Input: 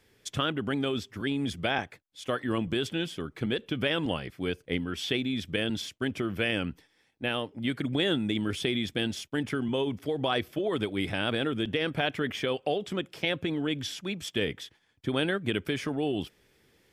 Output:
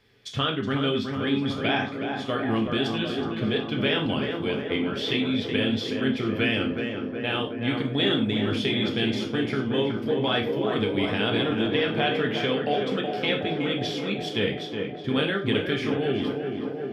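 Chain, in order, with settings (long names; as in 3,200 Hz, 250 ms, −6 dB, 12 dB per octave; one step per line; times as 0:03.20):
high shelf with overshoot 5,800 Hz −9 dB, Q 1.5
on a send: tape delay 371 ms, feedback 86%, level −4 dB, low-pass 1,600 Hz
on the sum: reverb whose tail is shaped and stops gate 130 ms falling, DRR 1 dB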